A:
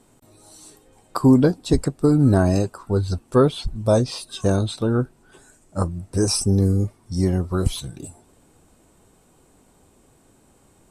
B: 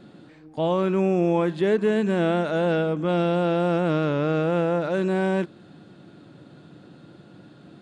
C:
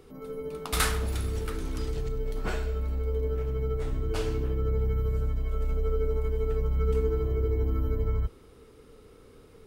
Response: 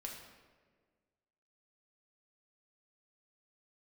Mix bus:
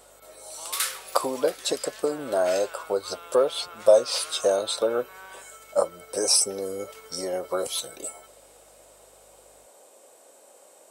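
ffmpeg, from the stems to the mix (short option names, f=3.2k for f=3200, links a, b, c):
-filter_complex "[0:a]acompressor=threshold=-21dB:ratio=6,highpass=f=560:t=q:w=4.9,volume=-1dB[a];[1:a]acompressor=threshold=-31dB:ratio=2.5,highpass=f=1.1k:t=q:w=3.7,volume=-12dB[b];[2:a]highpass=1.4k,dynaudnorm=f=130:g=17:m=4dB,aeval=exprs='val(0)+0.000891*(sin(2*PI*50*n/s)+sin(2*PI*2*50*n/s)/2+sin(2*PI*3*50*n/s)/3+sin(2*PI*4*50*n/s)/4+sin(2*PI*5*50*n/s)/5)':c=same,volume=-5.5dB[c];[a][b][c]amix=inputs=3:normalize=0,highshelf=f=3k:g=9"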